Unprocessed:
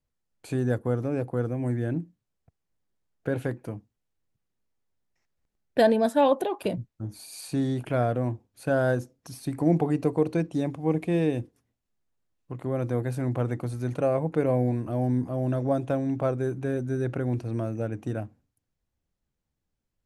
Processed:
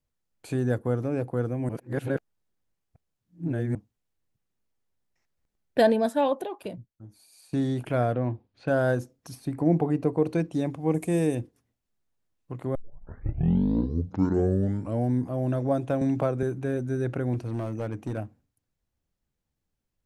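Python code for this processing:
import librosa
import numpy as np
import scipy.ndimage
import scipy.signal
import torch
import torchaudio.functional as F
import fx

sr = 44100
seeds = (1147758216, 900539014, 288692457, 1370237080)

y = fx.lowpass(x, sr, hz=4500.0, slope=24, at=(8.14, 8.68))
y = fx.high_shelf(y, sr, hz=2500.0, db=-8.5, at=(9.35, 10.24))
y = fx.high_shelf_res(y, sr, hz=5400.0, db=12.0, q=1.5, at=(10.94, 11.35))
y = fx.band_squash(y, sr, depth_pct=100, at=(16.01, 16.43))
y = fx.clip_hard(y, sr, threshold_db=-25.5, at=(17.34, 18.18))
y = fx.edit(y, sr, fx.reverse_span(start_s=1.69, length_s=2.06),
    fx.fade_out_to(start_s=5.87, length_s=1.66, curve='qua', floor_db=-14.5),
    fx.tape_start(start_s=12.75, length_s=2.36), tone=tone)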